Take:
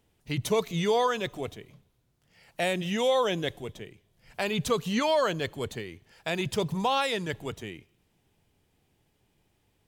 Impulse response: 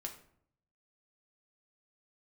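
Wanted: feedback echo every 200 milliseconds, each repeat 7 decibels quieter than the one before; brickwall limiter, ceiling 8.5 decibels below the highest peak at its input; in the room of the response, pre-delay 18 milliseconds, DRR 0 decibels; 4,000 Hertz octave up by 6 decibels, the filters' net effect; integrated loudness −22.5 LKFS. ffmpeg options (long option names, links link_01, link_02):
-filter_complex "[0:a]equalizer=frequency=4000:width_type=o:gain=7.5,alimiter=limit=-20dB:level=0:latency=1,aecho=1:1:200|400|600|800|1000:0.447|0.201|0.0905|0.0407|0.0183,asplit=2[link_01][link_02];[1:a]atrim=start_sample=2205,adelay=18[link_03];[link_02][link_03]afir=irnorm=-1:irlink=0,volume=2dB[link_04];[link_01][link_04]amix=inputs=2:normalize=0,volume=5dB"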